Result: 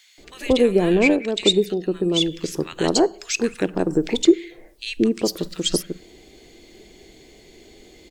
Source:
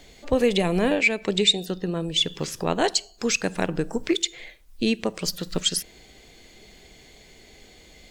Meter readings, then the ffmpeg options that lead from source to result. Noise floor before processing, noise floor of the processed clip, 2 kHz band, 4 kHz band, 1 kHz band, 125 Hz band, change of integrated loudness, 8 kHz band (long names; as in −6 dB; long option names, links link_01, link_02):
−52 dBFS, −50 dBFS, −1.0 dB, 0.0 dB, 0.0 dB, +1.5 dB, +3.5 dB, 0.0 dB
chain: -filter_complex "[0:a]equalizer=frequency=340:width=1.9:gain=10.5,acrossover=split=1400[link_01][link_02];[link_01]adelay=180[link_03];[link_03][link_02]amix=inputs=2:normalize=0"